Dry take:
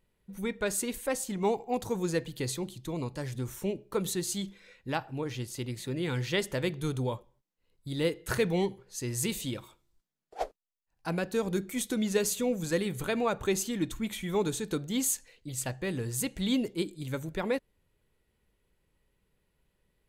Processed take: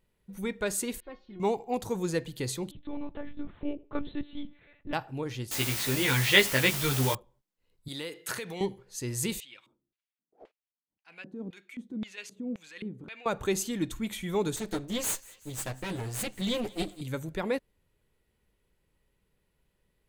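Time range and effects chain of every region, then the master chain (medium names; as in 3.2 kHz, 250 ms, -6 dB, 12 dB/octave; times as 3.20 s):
1.00–1.40 s: steep low-pass 4.4 kHz 48 dB/octave + tilt EQ -2 dB/octave + feedback comb 360 Hz, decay 0.19 s, mix 90%
2.71–4.93 s: treble shelf 2.3 kHz -9 dB + monotone LPC vocoder at 8 kHz 290 Hz
5.51–7.15 s: peaking EQ 2.3 kHz +11.5 dB 2.2 oct + word length cut 6-bit, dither triangular + doubling 15 ms -2.5 dB
7.88–8.61 s: high-pass 150 Hz + compression 10:1, threshold -32 dBFS + tilt shelf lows -5.5 dB, about 710 Hz
9.40–13.26 s: transient shaper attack -10 dB, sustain +1 dB + LFO band-pass square 1.9 Hz 250–2500 Hz
14.56–17.01 s: comb filter that takes the minimum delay 9.5 ms + thinning echo 188 ms, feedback 68%, high-pass 970 Hz, level -21.5 dB
whole clip: none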